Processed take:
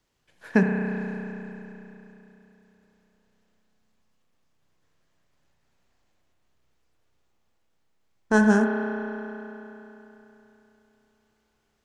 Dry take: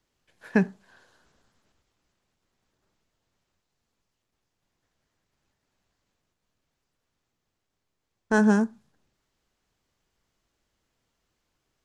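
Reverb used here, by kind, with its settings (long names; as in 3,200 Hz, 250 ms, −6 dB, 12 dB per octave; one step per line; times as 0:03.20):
spring reverb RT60 3.4 s, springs 32 ms, chirp 75 ms, DRR 1.5 dB
level +1.5 dB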